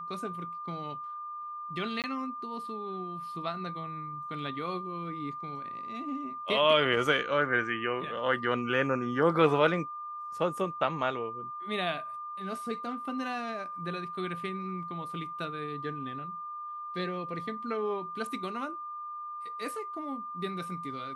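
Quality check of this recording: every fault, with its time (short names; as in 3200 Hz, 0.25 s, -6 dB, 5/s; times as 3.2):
tone 1200 Hz -37 dBFS
2.02–2.04 gap 18 ms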